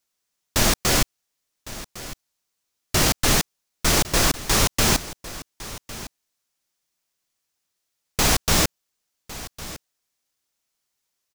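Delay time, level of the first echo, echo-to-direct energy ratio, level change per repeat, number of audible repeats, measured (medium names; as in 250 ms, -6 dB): 1106 ms, -16.5 dB, -16.5 dB, no regular repeats, 1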